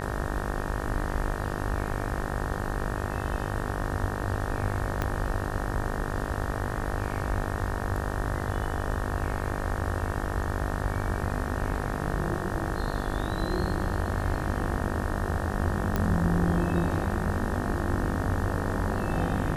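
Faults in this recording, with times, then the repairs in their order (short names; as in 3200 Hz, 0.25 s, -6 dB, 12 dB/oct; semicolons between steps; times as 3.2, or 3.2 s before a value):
buzz 50 Hz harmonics 37 -33 dBFS
5.02 pop -14 dBFS
15.96 pop -13 dBFS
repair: de-click; de-hum 50 Hz, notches 37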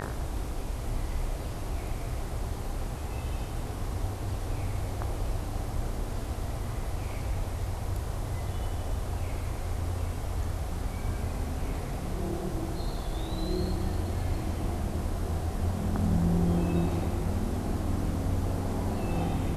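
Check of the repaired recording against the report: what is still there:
5.02 pop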